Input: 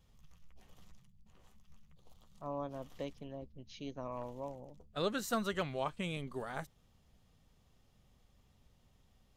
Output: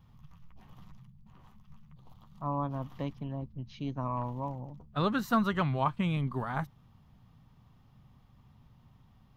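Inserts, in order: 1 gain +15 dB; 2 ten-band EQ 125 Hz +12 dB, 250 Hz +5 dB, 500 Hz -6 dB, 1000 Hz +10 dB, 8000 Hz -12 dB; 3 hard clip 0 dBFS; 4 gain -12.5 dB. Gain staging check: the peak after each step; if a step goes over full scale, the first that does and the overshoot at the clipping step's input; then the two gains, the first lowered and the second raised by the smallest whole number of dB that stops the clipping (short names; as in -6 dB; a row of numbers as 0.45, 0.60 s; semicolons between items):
-8.0, -3.5, -3.5, -16.0 dBFS; no overload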